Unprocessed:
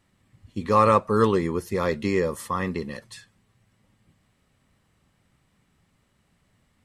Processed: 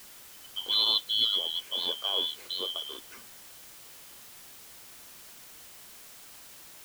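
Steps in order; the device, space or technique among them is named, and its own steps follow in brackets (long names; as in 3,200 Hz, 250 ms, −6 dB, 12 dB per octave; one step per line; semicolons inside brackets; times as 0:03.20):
split-band scrambled radio (band-splitting scrambler in four parts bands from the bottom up 2413; band-pass filter 330–3,000 Hz; white noise bed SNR 15 dB)
level −3 dB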